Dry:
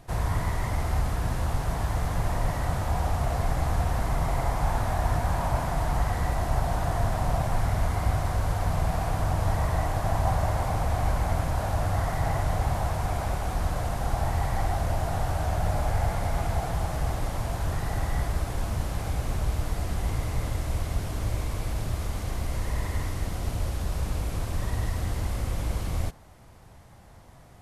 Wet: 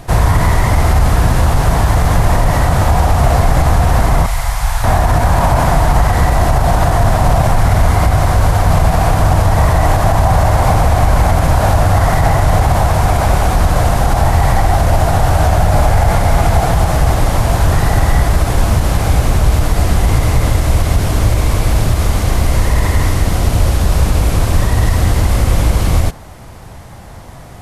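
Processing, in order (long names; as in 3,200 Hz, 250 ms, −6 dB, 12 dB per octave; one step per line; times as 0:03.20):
0:04.26–0:04.84: guitar amp tone stack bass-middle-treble 10-0-10
boost into a limiter +18.5 dB
level −1 dB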